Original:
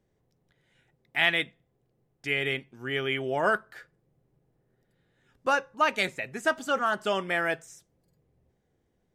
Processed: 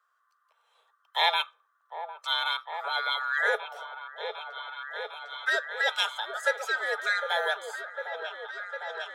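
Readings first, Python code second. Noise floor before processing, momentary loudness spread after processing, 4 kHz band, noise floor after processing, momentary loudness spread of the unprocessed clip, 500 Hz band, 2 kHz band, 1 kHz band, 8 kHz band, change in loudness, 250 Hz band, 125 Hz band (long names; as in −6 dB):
−74 dBFS, 12 LU, +5.0 dB, −72 dBFS, 9 LU, −3.5 dB, +1.0 dB, 0.0 dB, −0.5 dB, −2.0 dB, below −20 dB, below −40 dB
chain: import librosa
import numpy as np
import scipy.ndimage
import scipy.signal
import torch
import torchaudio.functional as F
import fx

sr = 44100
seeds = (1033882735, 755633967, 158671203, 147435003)

y = fx.band_swap(x, sr, width_hz=1000)
y = scipy.signal.sosfilt(scipy.signal.butter(12, 450.0, 'highpass', fs=sr, output='sos'), y)
y = fx.echo_opening(y, sr, ms=754, hz=750, octaves=1, feedback_pct=70, wet_db=-6)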